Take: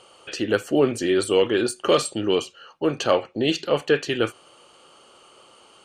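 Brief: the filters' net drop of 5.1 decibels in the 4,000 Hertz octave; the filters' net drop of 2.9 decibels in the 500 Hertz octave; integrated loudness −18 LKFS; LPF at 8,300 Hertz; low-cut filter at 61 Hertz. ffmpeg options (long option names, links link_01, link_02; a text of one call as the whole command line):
ffmpeg -i in.wav -af "highpass=61,lowpass=8300,equalizer=frequency=500:width_type=o:gain=-3.5,equalizer=frequency=4000:width_type=o:gain=-7.5,volume=7dB" out.wav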